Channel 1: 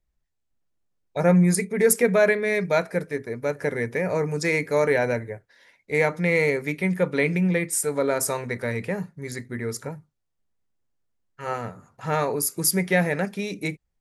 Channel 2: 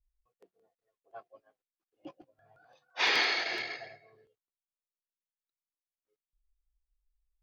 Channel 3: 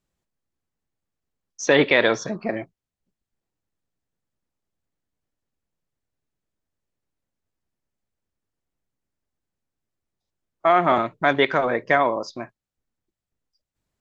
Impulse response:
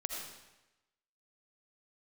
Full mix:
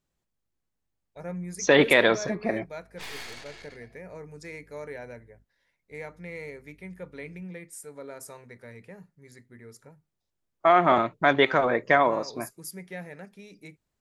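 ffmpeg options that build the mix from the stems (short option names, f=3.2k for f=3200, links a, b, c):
-filter_complex "[0:a]volume=-18dB,asplit=2[a][b];[1:a]aeval=exprs='0.188*(cos(1*acos(clip(val(0)/0.188,-1,1)))-cos(1*PI/2))+0.0376*(cos(8*acos(clip(val(0)/0.188,-1,1)))-cos(8*PI/2))':c=same,aeval=exprs='val(0)+0.00562*(sin(2*PI*50*n/s)+sin(2*PI*2*50*n/s)/2+sin(2*PI*3*50*n/s)/3+sin(2*PI*4*50*n/s)/4+sin(2*PI*5*50*n/s)/5)':c=same,volume=-14.5dB[c];[2:a]volume=-1.5dB[d];[b]apad=whole_len=327449[e];[c][e]sidechaingate=range=-33dB:threshold=-59dB:ratio=16:detection=peak[f];[a][f][d]amix=inputs=3:normalize=0"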